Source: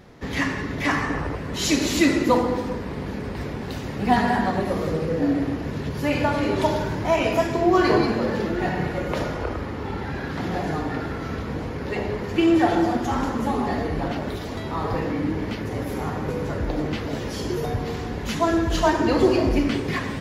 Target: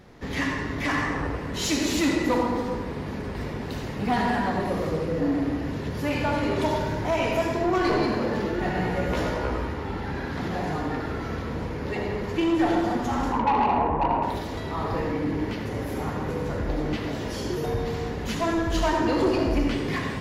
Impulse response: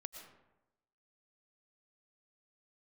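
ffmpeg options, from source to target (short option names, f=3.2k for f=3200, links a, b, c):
-filter_complex "[0:a]asettb=1/sr,asplit=3[a][b][c];[a]atrim=end=13.324[d];[b]atrim=start=13.32:end=14.23,asetpts=PTS-STARTPTS,afade=t=in:d=0.004:c=qsin,afade=t=out:st=0.906:d=0.004:c=qsin,lowpass=f=950:t=q:w=9.1[e];[c]atrim=start=14.226[f];[d][e]acrossfade=d=0.004:c1=hsin:c2=qsin[g];[g][f]acrossfade=d=0.004:c1=qsin:c2=hsin,asoftclip=type=tanh:threshold=-15.5dB,asettb=1/sr,asplit=3[h][i][j];[h]atrim=end=8.734[k];[i]atrim=start=8.73:end=9.74,asetpts=PTS-STARTPTS,afade=t=in:d=0.004:c=qsin,afade=t=out:st=1.006:d=0.004:c=qsin,asplit=2[l][m];[m]adelay=16,volume=-2dB[n];[l][n]amix=inputs=2:normalize=0,atrim=end_sample=44541[o];[j]atrim=start=9.736[p];[k][o]acrossfade=d=0.004:c1=hsin:c2=qsin[q];[q][p]acrossfade=d=0.004:c1=qsin:c2=hsin[r];[1:a]atrim=start_sample=2205,asetrate=66150,aresample=44100[s];[r][s]afir=irnorm=-1:irlink=0,volume=6.5dB"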